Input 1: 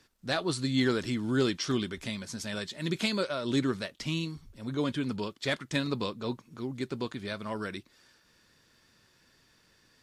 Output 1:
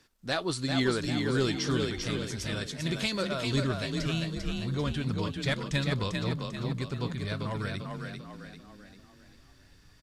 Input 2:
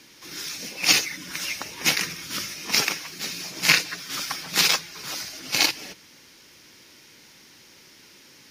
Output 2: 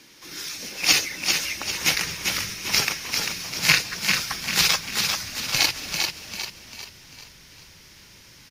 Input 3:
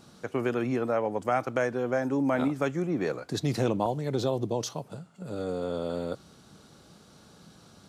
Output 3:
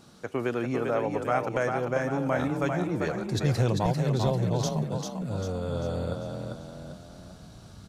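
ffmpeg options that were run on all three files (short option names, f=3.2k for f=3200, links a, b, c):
-filter_complex "[0:a]asubboost=boost=10.5:cutoff=84,asplit=7[a][b][c][d][e][f][g];[b]adelay=395,afreqshift=32,volume=-4.5dB[h];[c]adelay=790,afreqshift=64,volume=-11.4dB[i];[d]adelay=1185,afreqshift=96,volume=-18.4dB[j];[e]adelay=1580,afreqshift=128,volume=-25.3dB[k];[f]adelay=1975,afreqshift=160,volume=-32.2dB[l];[g]adelay=2370,afreqshift=192,volume=-39.2dB[m];[a][h][i][j][k][l][m]amix=inputs=7:normalize=0"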